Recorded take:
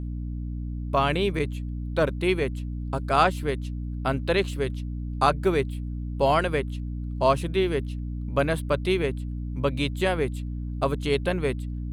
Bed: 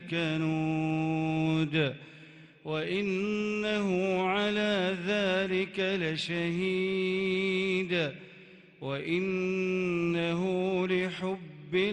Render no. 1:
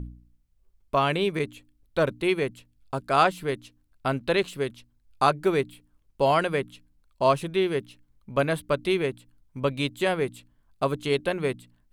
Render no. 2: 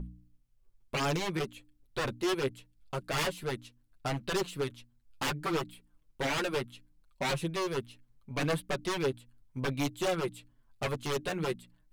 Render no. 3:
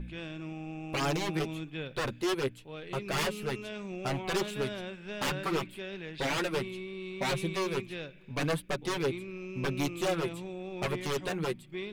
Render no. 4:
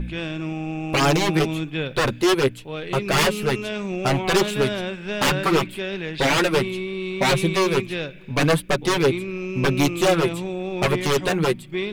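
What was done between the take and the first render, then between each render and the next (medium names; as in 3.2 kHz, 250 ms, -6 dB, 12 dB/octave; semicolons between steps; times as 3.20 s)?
de-hum 60 Hz, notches 5
wavefolder -22.5 dBFS; flange 0.69 Hz, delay 5.1 ms, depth 4 ms, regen +3%
add bed -11 dB
trim +12 dB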